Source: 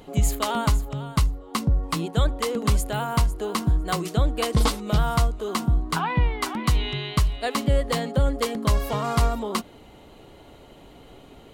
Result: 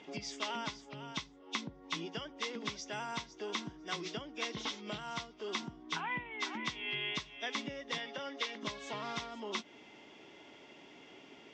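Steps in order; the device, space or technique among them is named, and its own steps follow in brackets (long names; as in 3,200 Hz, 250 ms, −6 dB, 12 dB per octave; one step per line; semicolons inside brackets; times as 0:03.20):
0:07.98–0:08.63: meter weighting curve A
hearing aid with frequency lowering (hearing-aid frequency compression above 2,300 Hz 1.5 to 1; downward compressor 2.5 to 1, threshold −31 dBFS, peak gain reduction 10.5 dB; loudspeaker in its box 300–6,500 Hz, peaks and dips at 500 Hz −9 dB, 730 Hz −6 dB, 1,200 Hz −6 dB, 2,100 Hz +6 dB, 3,500 Hz +6 dB, 5,800 Hz +3 dB)
level −3.5 dB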